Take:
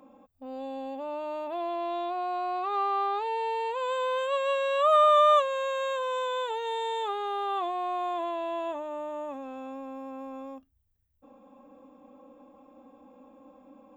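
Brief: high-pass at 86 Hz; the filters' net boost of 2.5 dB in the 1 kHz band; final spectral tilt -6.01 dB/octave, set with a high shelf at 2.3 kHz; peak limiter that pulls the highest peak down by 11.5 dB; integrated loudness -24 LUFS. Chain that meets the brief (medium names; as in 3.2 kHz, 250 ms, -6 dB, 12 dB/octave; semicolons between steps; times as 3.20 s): high-pass 86 Hz; peaking EQ 1 kHz +4.5 dB; treble shelf 2.3 kHz -6 dB; trim +6.5 dB; peak limiter -16 dBFS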